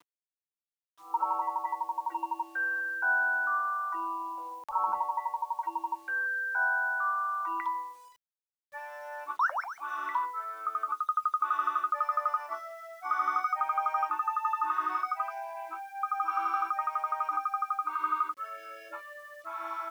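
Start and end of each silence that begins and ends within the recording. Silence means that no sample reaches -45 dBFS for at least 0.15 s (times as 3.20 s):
7.95–8.73 s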